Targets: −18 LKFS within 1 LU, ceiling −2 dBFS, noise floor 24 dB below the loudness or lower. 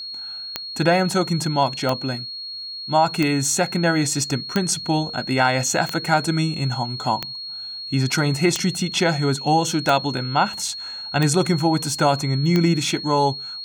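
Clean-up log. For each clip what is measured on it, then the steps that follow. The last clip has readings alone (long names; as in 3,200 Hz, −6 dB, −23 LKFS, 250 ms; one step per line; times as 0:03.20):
number of clicks 10; interfering tone 4,300 Hz; level of the tone −30 dBFS; integrated loudness −21.0 LKFS; sample peak −3.0 dBFS; target loudness −18.0 LKFS
→ click removal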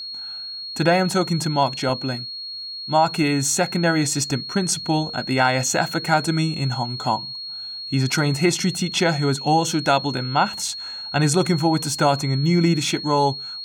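number of clicks 0; interfering tone 4,300 Hz; level of the tone −30 dBFS
→ notch filter 4,300 Hz, Q 30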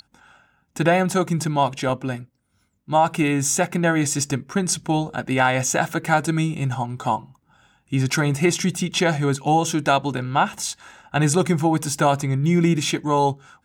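interfering tone none found; integrated loudness −21.5 LKFS; sample peak −3.5 dBFS; target loudness −18.0 LKFS
→ level +3.5 dB
brickwall limiter −2 dBFS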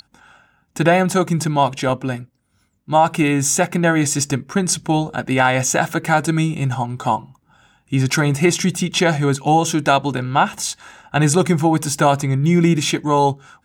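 integrated loudness −18.0 LKFS; sample peak −2.0 dBFS; background noise floor −64 dBFS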